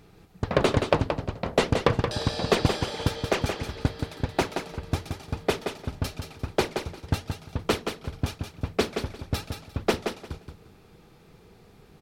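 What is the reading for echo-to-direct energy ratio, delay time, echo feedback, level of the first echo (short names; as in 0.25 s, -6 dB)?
-6.5 dB, 0.175 s, 19%, -6.5 dB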